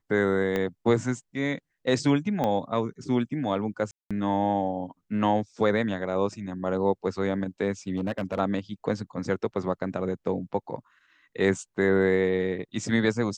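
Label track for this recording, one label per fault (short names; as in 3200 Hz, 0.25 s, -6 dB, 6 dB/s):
0.560000	0.560000	pop -15 dBFS
2.440000	2.440000	pop -15 dBFS
3.910000	4.110000	gap 0.196 s
7.970000	8.390000	clipped -23 dBFS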